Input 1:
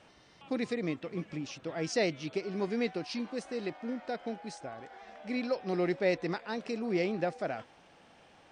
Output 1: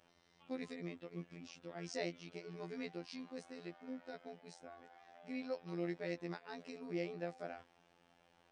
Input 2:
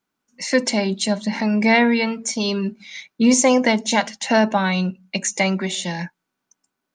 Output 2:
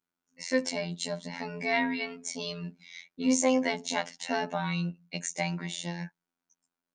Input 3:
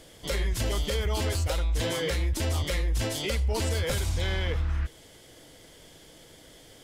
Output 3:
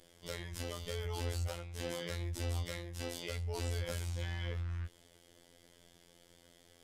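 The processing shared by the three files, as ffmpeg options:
ffmpeg -i in.wav -af "afftfilt=real='hypot(re,im)*cos(PI*b)':imag='0':win_size=2048:overlap=0.75,volume=-8dB" out.wav

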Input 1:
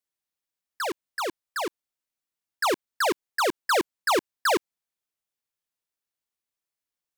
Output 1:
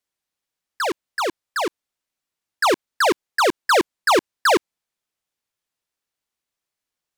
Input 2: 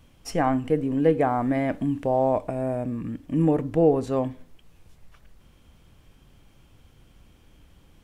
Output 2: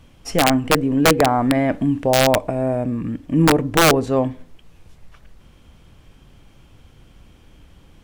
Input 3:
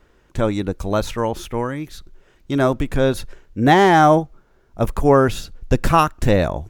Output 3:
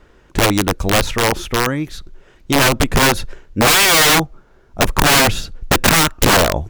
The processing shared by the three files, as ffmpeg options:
ffmpeg -i in.wav -af "highshelf=frequency=11000:gain=-8,aeval=exprs='(mod(4.47*val(0)+1,2)-1)/4.47':channel_layout=same,volume=6.5dB" out.wav

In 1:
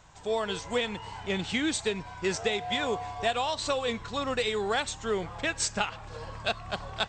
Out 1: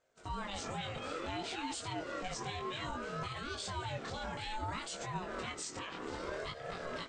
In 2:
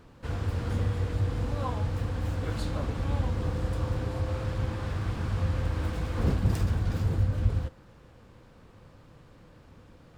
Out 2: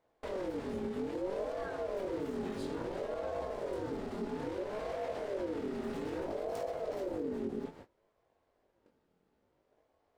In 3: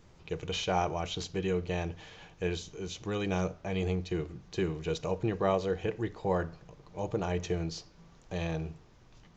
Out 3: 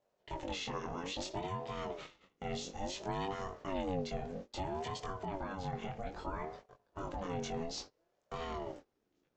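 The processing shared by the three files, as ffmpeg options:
ffmpeg -i in.wav -af "agate=range=-24dB:threshold=-47dB:ratio=16:detection=peak,acompressor=threshold=-34dB:ratio=6,alimiter=level_in=10.5dB:limit=-24dB:level=0:latency=1:release=17,volume=-10.5dB,flanger=delay=19.5:depth=2.8:speed=0.61,aeval=exprs='val(0)*sin(2*PI*450*n/s+450*0.3/0.6*sin(2*PI*0.6*n/s))':channel_layout=same,volume=8dB" out.wav

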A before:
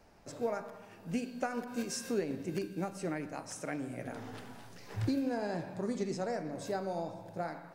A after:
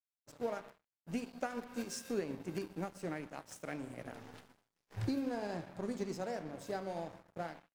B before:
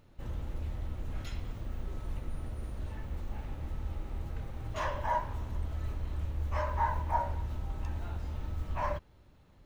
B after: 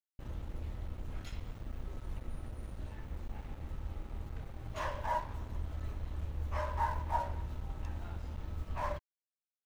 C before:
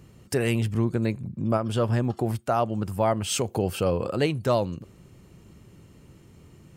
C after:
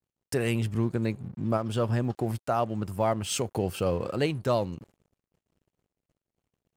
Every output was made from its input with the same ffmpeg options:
ffmpeg -i in.wav -af "aeval=exprs='sgn(val(0))*max(abs(val(0))-0.00398,0)':channel_layout=same,agate=range=-33dB:threshold=-49dB:ratio=3:detection=peak,volume=-2.5dB" out.wav

